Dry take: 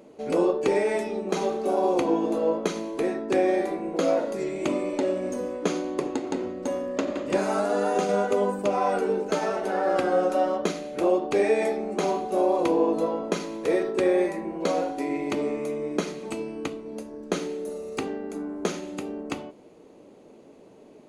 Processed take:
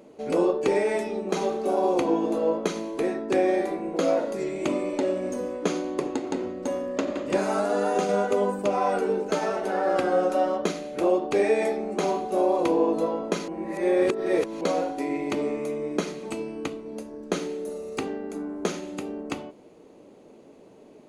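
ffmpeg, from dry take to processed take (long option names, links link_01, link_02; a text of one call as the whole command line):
ffmpeg -i in.wav -filter_complex "[0:a]asplit=3[link_01][link_02][link_03];[link_01]atrim=end=13.482[link_04];[link_02]atrim=start=13.478:end=14.612,asetpts=PTS-STARTPTS,areverse[link_05];[link_03]atrim=start=14.608[link_06];[link_04][link_05]acrossfade=duration=0.004:curve1=hsin:curve2=hsin[link_07];[link_07][link_06]acrossfade=duration=0.004:curve1=hsin:curve2=hsin" out.wav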